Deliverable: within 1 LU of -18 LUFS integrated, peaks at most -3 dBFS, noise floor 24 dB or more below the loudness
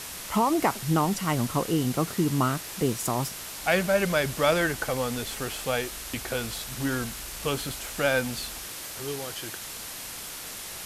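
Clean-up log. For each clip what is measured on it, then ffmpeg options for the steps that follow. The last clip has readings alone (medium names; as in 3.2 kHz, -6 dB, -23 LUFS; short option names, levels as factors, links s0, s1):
noise floor -39 dBFS; noise floor target -52 dBFS; loudness -28.0 LUFS; peak level -9.5 dBFS; loudness target -18.0 LUFS
-> -af "afftdn=nr=13:nf=-39"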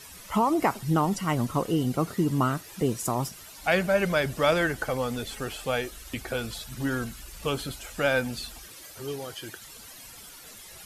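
noise floor -47 dBFS; noise floor target -52 dBFS
-> -af "afftdn=nr=6:nf=-47"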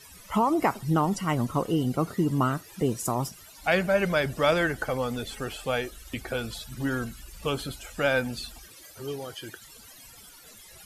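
noise floor -50 dBFS; noise floor target -52 dBFS
-> -af "afftdn=nr=6:nf=-50"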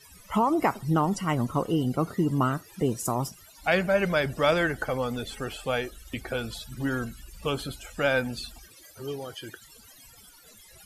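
noise floor -53 dBFS; loudness -28.0 LUFS; peak level -10.0 dBFS; loudness target -18.0 LUFS
-> -af "volume=3.16,alimiter=limit=0.708:level=0:latency=1"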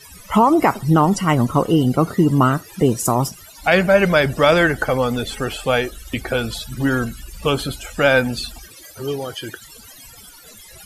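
loudness -18.5 LUFS; peak level -3.0 dBFS; noise floor -43 dBFS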